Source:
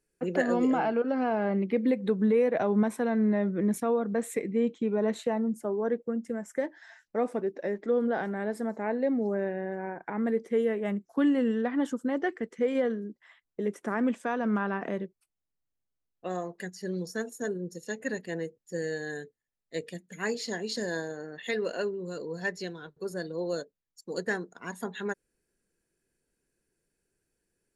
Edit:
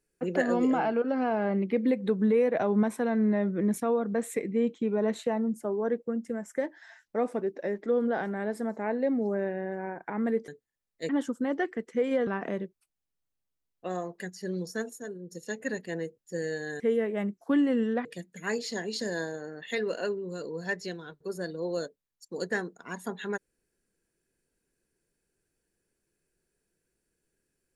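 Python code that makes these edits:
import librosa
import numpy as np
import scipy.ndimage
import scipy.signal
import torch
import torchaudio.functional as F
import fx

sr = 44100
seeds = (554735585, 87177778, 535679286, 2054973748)

y = fx.edit(x, sr, fx.swap(start_s=10.48, length_s=1.25, other_s=19.2, other_length_s=0.61),
    fx.cut(start_s=12.91, length_s=1.76),
    fx.clip_gain(start_s=17.39, length_s=0.32, db=-7.0), tone=tone)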